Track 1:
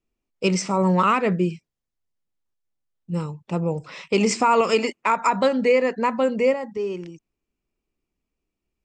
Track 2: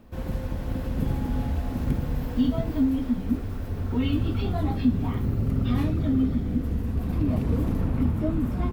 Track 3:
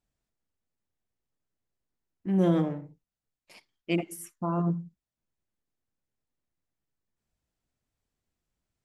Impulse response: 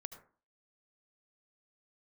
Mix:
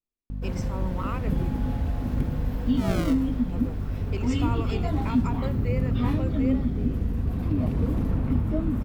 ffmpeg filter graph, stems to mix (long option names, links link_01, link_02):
-filter_complex "[0:a]volume=-16dB,asplit=2[link_01][link_02];[1:a]aeval=exprs='val(0)+0.0355*(sin(2*PI*50*n/s)+sin(2*PI*2*50*n/s)/2+sin(2*PI*3*50*n/s)/3+sin(2*PI*4*50*n/s)/4+sin(2*PI*5*50*n/s)/5)':channel_layout=same,adelay=300,volume=-1dB[link_03];[2:a]acrusher=samples=38:mix=1:aa=0.000001:lfo=1:lforange=38:lforate=0.44,acontrast=75,adelay=500,volume=-12dB[link_04];[link_02]apad=whole_len=412056[link_05];[link_04][link_05]sidechaincompress=threshold=-43dB:ratio=8:attack=16:release=888[link_06];[link_01][link_03][link_06]amix=inputs=3:normalize=0,highshelf=frequency=5100:gain=-4.5"